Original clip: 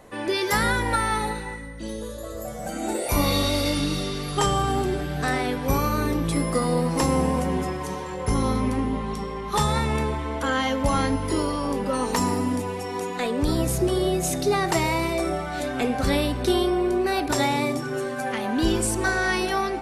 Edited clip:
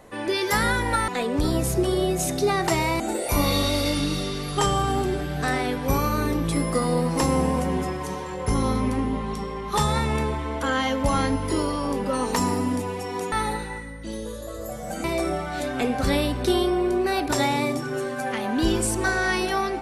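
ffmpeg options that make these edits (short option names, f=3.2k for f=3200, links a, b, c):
-filter_complex "[0:a]asplit=5[a][b][c][d][e];[a]atrim=end=1.082[f];[b]atrim=start=13.118:end=15.042[g];[c]atrim=start=2.798:end=13.122[h];[d]atrim=start=1.078:end=2.802[i];[e]atrim=start=15.038[j];[f][g]acrossfade=d=0.004:c1=hsin:c2=hsin[k];[k][h]acrossfade=d=0.004:c1=hsin:c2=hsin[l];[l][i]acrossfade=d=0.004:c1=hsin:c2=hsin[m];[m][j]acrossfade=d=0.004:c1=hsin:c2=hsin"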